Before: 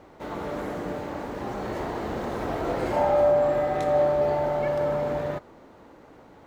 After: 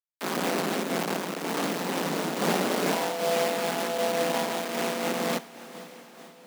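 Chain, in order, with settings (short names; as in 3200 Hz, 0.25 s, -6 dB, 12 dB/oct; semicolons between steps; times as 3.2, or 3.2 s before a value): in parallel at 0 dB: negative-ratio compressor -29 dBFS, ratio -0.5; on the sum: tone controls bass +8 dB, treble +1 dB; ring modulator 88 Hz; bit-crush 4-bit; steep high-pass 160 Hz 72 dB/oct; on a send: diffused feedback echo 0.511 s, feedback 48%, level -13.5 dB; on the sum: noise-modulated level, depth 65%; gain -2 dB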